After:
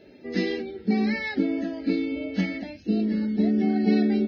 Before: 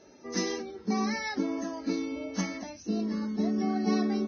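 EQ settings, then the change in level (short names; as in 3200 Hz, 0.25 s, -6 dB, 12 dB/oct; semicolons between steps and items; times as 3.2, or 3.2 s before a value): fixed phaser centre 2600 Hz, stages 4; +7.0 dB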